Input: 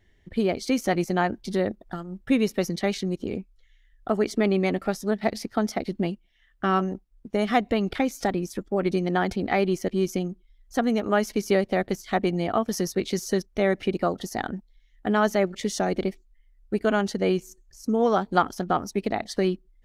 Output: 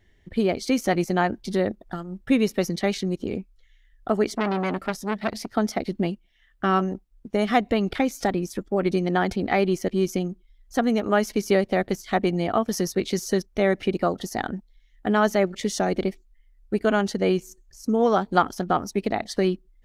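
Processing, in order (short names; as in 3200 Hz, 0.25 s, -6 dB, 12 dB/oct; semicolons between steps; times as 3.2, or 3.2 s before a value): 4.28–5.47 core saturation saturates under 1500 Hz; gain +1.5 dB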